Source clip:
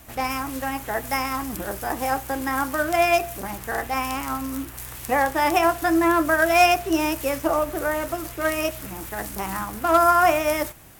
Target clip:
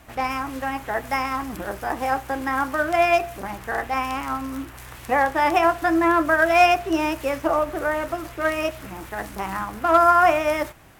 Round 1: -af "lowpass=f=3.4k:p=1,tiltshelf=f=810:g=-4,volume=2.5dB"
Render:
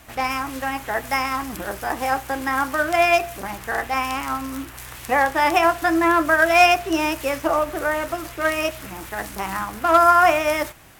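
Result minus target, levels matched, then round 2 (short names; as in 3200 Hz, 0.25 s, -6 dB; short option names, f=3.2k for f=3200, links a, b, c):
4000 Hz band +3.5 dB
-af "lowpass=f=1.5k:p=1,tiltshelf=f=810:g=-4,volume=2.5dB"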